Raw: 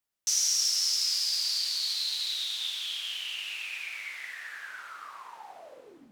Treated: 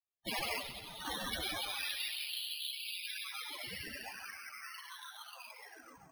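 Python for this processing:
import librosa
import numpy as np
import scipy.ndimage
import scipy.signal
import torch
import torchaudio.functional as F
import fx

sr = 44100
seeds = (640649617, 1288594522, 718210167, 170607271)

p1 = fx.halfwave_hold(x, sr)
p2 = fx.notch(p1, sr, hz=5300.0, q=9.0)
p3 = fx.spec_gate(p2, sr, threshold_db=-10, keep='weak')
p4 = fx.peak_eq(p3, sr, hz=420.0, db=-3.5, octaves=2.3)
p5 = fx.spec_topn(p4, sr, count=16)
p6 = fx.air_absorb(p5, sr, metres=54.0, at=(0.58, 1.05))
p7 = p6 + fx.echo_feedback(p6, sr, ms=138, feedback_pct=58, wet_db=-13.5, dry=0)
p8 = np.repeat(p7[::6], 6)[:len(p7)]
y = F.gain(torch.from_numpy(p8), 3.0).numpy()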